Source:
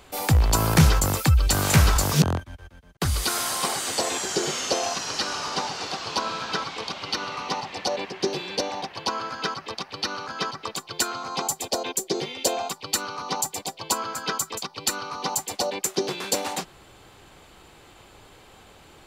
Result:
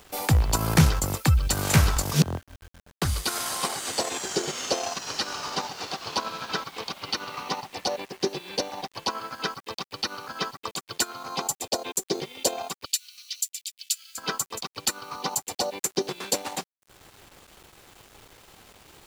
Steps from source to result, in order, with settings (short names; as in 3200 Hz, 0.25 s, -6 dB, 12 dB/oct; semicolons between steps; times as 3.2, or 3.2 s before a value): transient shaper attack +2 dB, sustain -11 dB; requantised 8-bit, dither none; 12.85–14.18 inverse Chebyshev high-pass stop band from 1000 Hz, stop band 50 dB; gain -2.5 dB